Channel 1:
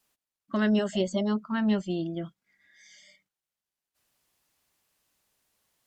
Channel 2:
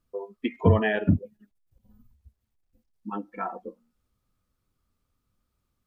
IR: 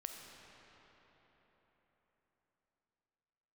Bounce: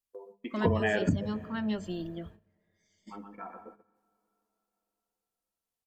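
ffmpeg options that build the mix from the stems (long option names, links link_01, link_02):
-filter_complex "[0:a]highshelf=frequency=4900:gain=7.5,volume=-7dB,asplit=3[link_01][link_02][link_03];[link_02]volume=-17dB[link_04];[1:a]volume=1.5dB,asplit=3[link_05][link_06][link_07];[link_06]volume=-16dB[link_08];[link_07]volume=-20.5dB[link_09];[link_03]apad=whole_len=258474[link_10];[link_05][link_10]sidechaingate=range=-18dB:threshold=-45dB:ratio=16:detection=peak[link_11];[2:a]atrim=start_sample=2205[link_12];[link_04][link_08]amix=inputs=2:normalize=0[link_13];[link_13][link_12]afir=irnorm=-1:irlink=0[link_14];[link_09]aecho=0:1:122|244|366|488:1|0.26|0.0676|0.0176[link_15];[link_01][link_11][link_14][link_15]amix=inputs=4:normalize=0,agate=range=-16dB:threshold=-50dB:ratio=16:detection=peak,bandreject=frequency=50:width_type=h:width=6,bandreject=frequency=100:width_type=h:width=6,bandreject=frequency=150:width_type=h:width=6,bandreject=frequency=200:width_type=h:width=6,acompressor=threshold=-23dB:ratio=6"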